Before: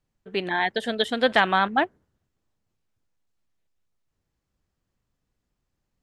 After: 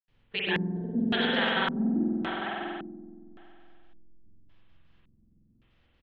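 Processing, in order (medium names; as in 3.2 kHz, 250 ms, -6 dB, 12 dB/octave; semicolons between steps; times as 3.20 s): low-pass 5.9 kHz; hum notches 50/100/150/200/250/300/350 Hz; reverse; compression, threshold -32 dBFS, peak gain reduction 17.5 dB; reverse; peak limiter -29 dBFS, peak gain reduction 9.5 dB; bands offset in time highs, lows 80 ms, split 660 Hz; trance gate ".xx.x.xx" 192 bpm -60 dB; on a send: delay 650 ms -8 dB; on the sum: spring tank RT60 2.3 s, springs 46 ms, chirp 70 ms, DRR -5.5 dB; LFO low-pass square 0.89 Hz 240–3200 Hz; trim +8.5 dB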